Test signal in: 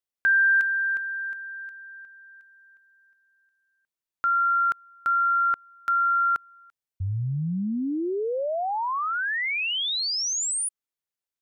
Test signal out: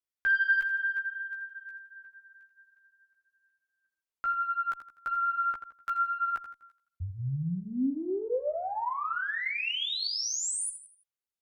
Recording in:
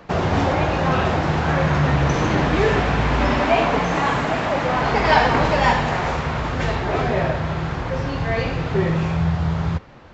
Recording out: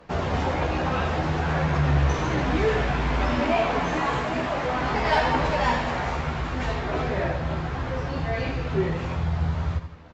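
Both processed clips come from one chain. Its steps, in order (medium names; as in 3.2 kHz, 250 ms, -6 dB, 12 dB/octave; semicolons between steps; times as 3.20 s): feedback delay 83 ms, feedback 39%, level -10.5 dB; Chebyshev shaper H 2 -16 dB, 5 -24 dB, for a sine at -2 dBFS; chorus voices 6, 0.53 Hz, delay 14 ms, depth 2.3 ms; trim -5 dB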